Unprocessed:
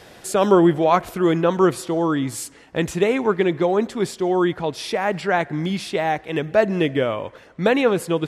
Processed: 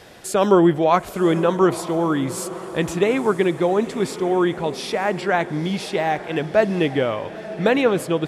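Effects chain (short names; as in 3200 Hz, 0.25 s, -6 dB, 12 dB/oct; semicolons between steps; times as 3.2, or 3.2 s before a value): diffused feedback echo 0.939 s, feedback 51%, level -14 dB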